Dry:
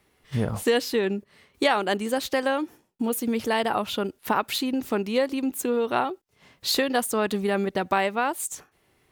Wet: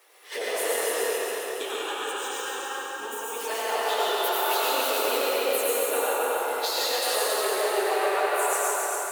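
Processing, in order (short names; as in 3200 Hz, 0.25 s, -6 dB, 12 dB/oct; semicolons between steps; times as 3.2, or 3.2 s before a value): phase scrambler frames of 50 ms; steep high-pass 390 Hz 48 dB/oct; high shelf 7700 Hz +5.5 dB; compressor 20:1, threshold -37 dBFS, peak gain reduction 22.5 dB; 0.76–3.37 fixed phaser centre 3000 Hz, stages 8; band-limited delay 0.145 s, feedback 37%, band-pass 990 Hz, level -6 dB; reverb RT60 3.5 s, pre-delay 78 ms, DRR -6.5 dB; lo-fi delay 0.277 s, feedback 55%, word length 10-bit, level -4.5 dB; gain +7.5 dB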